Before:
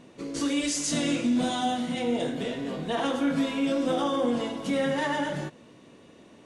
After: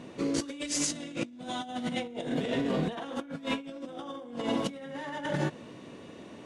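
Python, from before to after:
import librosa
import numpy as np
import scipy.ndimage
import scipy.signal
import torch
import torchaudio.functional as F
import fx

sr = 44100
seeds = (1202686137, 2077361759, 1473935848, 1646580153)

y = scipy.signal.sosfilt(scipy.signal.butter(2, 41.0, 'highpass', fs=sr, output='sos'), x)
y = fx.high_shelf(y, sr, hz=6100.0, db=-5.5)
y = fx.over_compress(y, sr, threshold_db=-33.0, ratio=-0.5)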